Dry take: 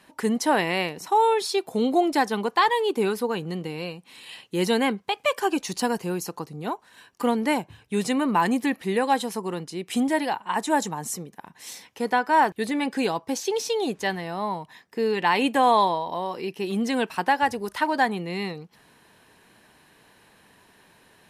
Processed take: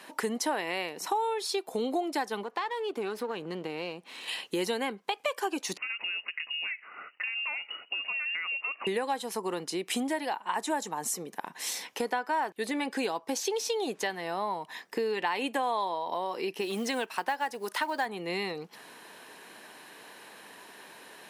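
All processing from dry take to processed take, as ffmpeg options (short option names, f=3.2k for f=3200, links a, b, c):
-filter_complex "[0:a]asettb=1/sr,asplit=3[a][b][c];[a]atrim=end=2.434[d];[b]atrim=start=2.43:end=4.28,asetpts=PTS-STARTPTS,afade=t=in:d=0.004:c=qsin,afade=t=out:st=1.846:d=0.004:c=qsin,aeval=exprs='if(lt(val(0),0),0.447*val(0),val(0))':c=same,lowpass=f=3.6k:p=1,acompressor=threshold=-43dB:ratio=1.5:attack=3.2:release=140:knee=1:detection=peak[e];[c]atrim=start=4.276[f];[d][e]acrossfade=d=0.004:c1=hsin:c2=qsin[g];[g][f]acrossfade=d=0.004:c1=qsin:c2=hsin,asettb=1/sr,asplit=3[h][i][j];[h]atrim=end=5.774[k];[i]atrim=start=5.77:end=8.87,asetpts=PTS-STARTPTS,afade=t=in:d=0.004:c=qsin,afade=t=out:st=3.096:d=0.004:c=qsin,acompressor=threshold=-37dB:ratio=5:attack=3.2:release=140:knee=1:detection=peak,lowpass=f=2.6k:t=q:w=0.5098,lowpass=f=2.6k:t=q:w=0.6013,lowpass=f=2.6k:t=q:w=0.9,lowpass=f=2.6k:t=q:w=2.563,afreqshift=-3000[l];[j]atrim=start=8.866[m];[k][l]acrossfade=d=0.004:c1=hsin:c2=qsin[n];[n][m]acrossfade=d=0.004:c1=qsin:c2=hsin,asettb=1/sr,asplit=3[o][p][q];[o]atrim=end=16.614[r];[p]atrim=start=16.61:end=18.06,asetpts=PTS-STARTPTS,afade=t=in:d=0.004:c=qsin,afade=t=out:st=1.446:d=0.004:c=qsin,lowshelf=f=470:g=-4,acrusher=bits=7:mode=log:mix=0:aa=0.000001[s];[q]atrim=start=18.056[t];[r][s]acrossfade=d=0.004:c1=hsin:c2=qsin[u];[u][t]acrossfade=d=0.004:c1=qsin:c2=hsin,highpass=310,acompressor=threshold=-38dB:ratio=4,volume=7.5dB"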